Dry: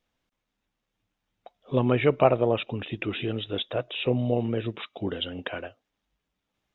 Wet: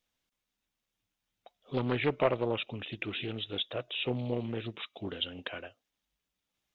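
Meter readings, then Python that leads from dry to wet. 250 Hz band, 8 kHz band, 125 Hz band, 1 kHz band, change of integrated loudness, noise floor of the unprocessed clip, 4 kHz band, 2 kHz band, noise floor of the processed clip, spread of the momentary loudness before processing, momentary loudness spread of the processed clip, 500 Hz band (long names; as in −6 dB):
−7.5 dB, can't be measured, −8.5 dB, −8.0 dB, −7.0 dB, −83 dBFS, −2.0 dB, −3.5 dB, below −85 dBFS, 13 LU, 12 LU, −8.0 dB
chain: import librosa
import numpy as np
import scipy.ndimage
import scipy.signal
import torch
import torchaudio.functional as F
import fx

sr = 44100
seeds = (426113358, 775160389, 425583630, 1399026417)

y = fx.high_shelf(x, sr, hz=2700.0, db=11.5)
y = fx.doppler_dist(y, sr, depth_ms=0.38)
y = y * librosa.db_to_amplitude(-8.5)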